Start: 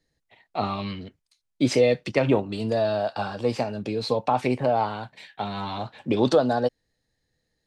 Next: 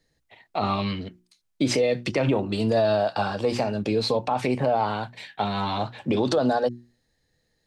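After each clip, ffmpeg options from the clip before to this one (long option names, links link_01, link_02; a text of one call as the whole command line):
ffmpeg -i in.wav -af "bandreject=frequency=60:width_type=h:width=6,bandreject=frequency=120:width_type=h:width=6,bandreject=frequency=180:width_type=h:width=6,bandreject=frequency=240:width_type=h:width=6,bandreject=frequency=300:width_type=h:width=6,bandreject=frequency=360:width_type=h:width=6,alimiter=limit=-18dB:level=0:latency=1:release=64,volume=4.5dB" out.wav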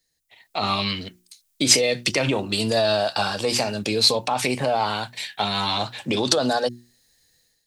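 ffmpeg -i in.wav -af "dynaudnorm=framelen=180:gausssize=5:maxgain=14dB,crystalizer=i=7.5:c=0,volume=-13dB" out.wav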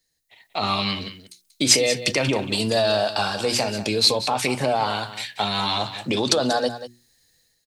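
ffmpeg -i in.wav -af "aecho=1:1:186:0.237" out.wav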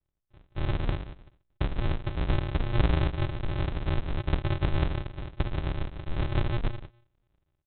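ffmpeg -i in.wav -af "flanger=delay=17.5:depth=7.7:speed=0.91,aresample=8000,acrusher=samples=34:mix=1:aa=0.000001,aresample=44100" out.wav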